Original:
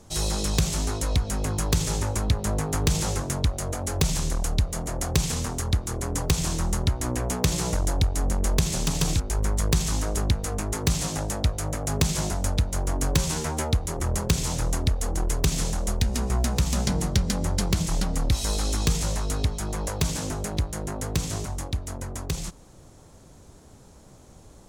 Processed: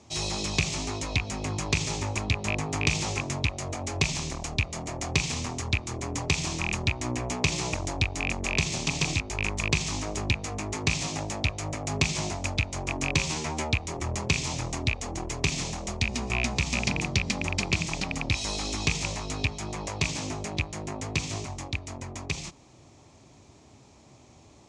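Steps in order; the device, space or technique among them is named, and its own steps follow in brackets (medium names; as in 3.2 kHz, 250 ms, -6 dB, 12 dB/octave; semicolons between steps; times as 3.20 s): car door speaker with a rattle (rattle on loud lows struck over -20 dBFS, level -17 dBFS; cabinet simulation 100–6900 Hz, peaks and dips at 180 Hz -8 dB, 490 Hz -8 dB, 1.5 kHz -9 dB, 2.4 kHz +7 dB)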